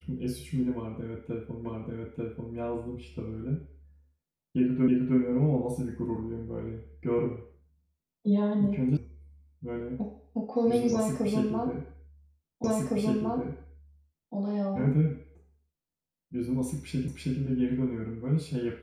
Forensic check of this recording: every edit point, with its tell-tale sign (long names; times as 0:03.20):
0:01.65: the same again, the last 0.89 s
0:04.88: the same again, the last 0.31 s
0:08.97: cut off before it has died away
0:12.64: the same again, the last 1.71 s
0:17.08: the same again, the last 0.32 s